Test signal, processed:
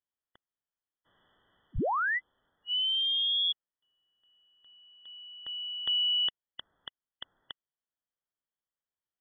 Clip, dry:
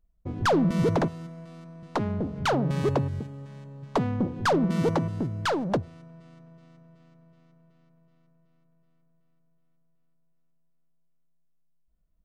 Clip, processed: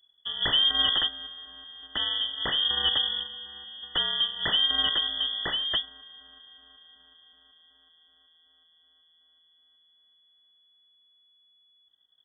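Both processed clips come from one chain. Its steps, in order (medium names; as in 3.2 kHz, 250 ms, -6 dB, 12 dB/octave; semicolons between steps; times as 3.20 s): formants flattened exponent 0.6; brick-wall FIR band-stop 460–1400 Hz; frequency inversion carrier 3.4 kHz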